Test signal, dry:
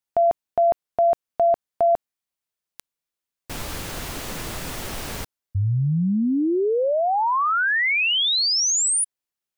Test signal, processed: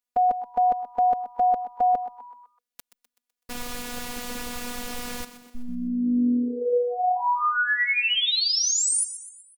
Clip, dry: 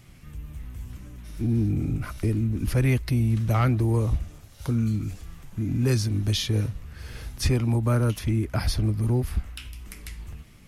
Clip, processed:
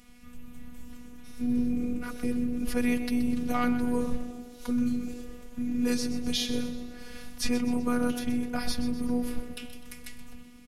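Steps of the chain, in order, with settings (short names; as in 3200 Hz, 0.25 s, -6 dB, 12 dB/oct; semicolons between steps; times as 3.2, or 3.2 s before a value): frequency-shifting echo 0.126 s, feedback 49%, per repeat +83 Hz, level -13 dB; robotiser 244 Hz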